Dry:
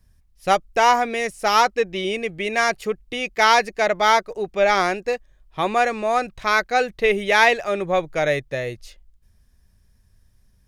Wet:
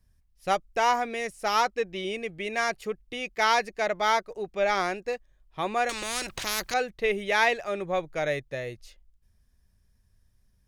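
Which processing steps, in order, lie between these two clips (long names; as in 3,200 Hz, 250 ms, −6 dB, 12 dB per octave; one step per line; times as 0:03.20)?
0:05.89–0:06.74: every bin compressed towards the loudest bin 4 to 1
level −7.5 dB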